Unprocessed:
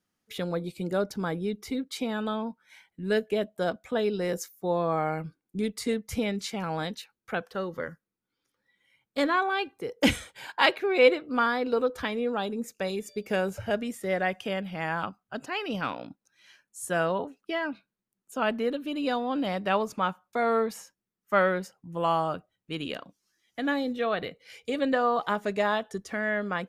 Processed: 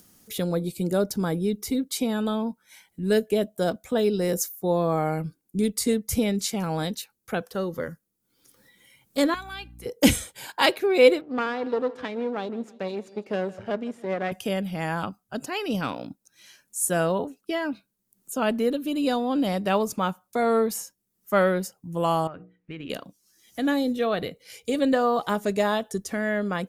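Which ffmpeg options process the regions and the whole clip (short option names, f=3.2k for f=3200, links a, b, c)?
-filter_complex "[0:a]asettb=1/sr,asplit=3[a][b][c];[a]atrim=end=9.344[d];[b]atrim=start=9.34:end=9.86,asetpts=PTS-STARTPTS,afade=t=in:d=0.004:c=qsin,afade=t=out:st=0.516:d=0.004:c=qsin,equalizer=f=360:t=o:w=2.6:g=-13,acrossover=split=610|1600|3600[e][f][g][h];[e]acompressor=threshold=-57dB:ratio=3[i];[f]acompressor=threshold=-42dB:ratio=3[j];[g]acompressor=threshold=-41dB:ratio=3[k];[h]acompressor=threshold=-55dB:ratio=3[l];[i][j][k][l]amix=inputs=4:normalize=0,aeval=exprs='val(0)+0.00251*(sin(2*PI*60*n/s)+sin(2*PI*2*60*n/s)/2+sin(2*PI*3*60*n/s)/3+sin(2*PI*4*60*n/s)/4+sin(2*PI*5*60*n/s)/5)':c=same[m];[c]atrim=start=9.856[n];[d][m]acrossfade=d=0.004:c1=hsin:c2=qsin[o];[o][n]acrossfade=d=0.004:c1=qsin:c2=hsin,asettb=1/sr,asplit=3[p][q][r];[p]atrim=end=11.214[s];[q]atrim=start=11.21:end=14.32,asetpts=PTS-STARTPTS,afade=t=in:d=0.004:c=qsin,afade=t=out:st=3.106:d=0.004:c=qsin,aeval=exprs='if(lt(val(0),0),0.251*val(0),val(0))':c=same,highpass=190,lowpass=2.7k,aecho=1:1:157|314|471:0.1|0.046|0.0212,atrim=end_sample=137151[t];[r]atrim=start=14.316[u];[s][t]acrossfade=d=0.004:c1=hsin:c2=qsin[v];[v][u]acrossfade=d=0.004:c1=qsin:c2=hsin,asettb=1/sr,asplit=3[w][x][y];[w]atrim=end=22.274[z];[x]atrim=start=22.27:end=22.9,asetpts=PTS-STARTPTS,afade=t=in:d=0.004:c=qsin,afade=t=out:st=0.626:d=0.004:c=qsin,lowpass=f=2k:t=q:w=3.2,bandreject=f=60:t=h:w=6,bandreject=f=120:t=h:w=6,bandreject=f=180:t=h:w=6,bandreject=f=240:t=h:w=6,bandreject=f=300:t=h:w=6,bandreject=f=360:t=h:w=6,bandreject=f=420:t=h:w=6,bandreject=f=480:t=h:w=6,acompressor=threshold=-39dB:ratio=4:attack=3.2:release=140:knee=1:detection=peak[aa];[y]atrim=start=22.896[ab];[z][aa]acrossfade=d=0.004:c1=hsin:c2=qsin[ac];[ac][ab]acrossfade=d=0.004:c1=qsin:c2=hsin,aemphasis=mode=production:type=cd,acompressor=mode=upward:threshold=-47dB:ratio=2.5,equalizer=f=1.9k:w=0.39:g=-8.5,volume=7dB"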